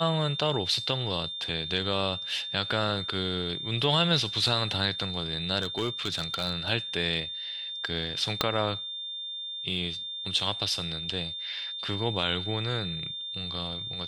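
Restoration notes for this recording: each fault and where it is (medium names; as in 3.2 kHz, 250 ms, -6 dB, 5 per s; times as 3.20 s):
whine 3.6 kHz -34 dBFS
5.61–6.60 s: clipped -22.5 dBFS
8.41 s: pop -8 dBFS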